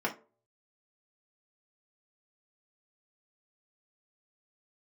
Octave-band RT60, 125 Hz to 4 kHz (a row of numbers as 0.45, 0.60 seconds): 0.65, 0.35, 0.45, 0.30, 0.25, 0.15 seconds